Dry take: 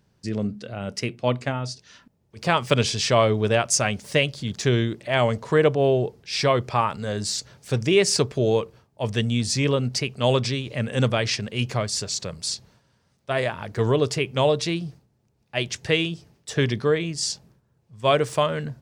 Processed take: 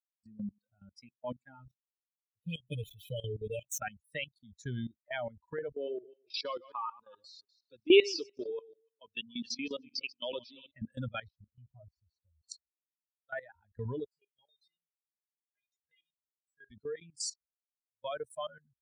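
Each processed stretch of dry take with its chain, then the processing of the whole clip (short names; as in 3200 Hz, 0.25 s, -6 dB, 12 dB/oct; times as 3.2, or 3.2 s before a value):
1.65–3.81 median filter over 9 samples + brick-wall FIR band-stop 600–2400 Hz + comb 6.4 ms, depth 92%
5.72–10.71 regenerating reverse delay 0.144 s, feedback 49%, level -6.5 dB + speaker cabinet 190–5900 Hz, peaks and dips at 190 Hz -9 dB, 350 Hz +7 dB, 760 Hz -6 dB, 1100 Hz +3 dB, 1800 Hz -4 dB, 2800 Hz +6 dB
11.27–12.5 G.711 law mismatch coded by mu + tape spacing loss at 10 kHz 30 dB + fixed phaser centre 790 Hz, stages 4
14.04–16.71 low shelf 200 Hz +4 dB + resonator 410 Hz, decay 0.32 s, mix 90%
whole clip: per-bin expansion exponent 3; HPF 56 Hz 12 dB/oct; level quantiser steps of 18 dB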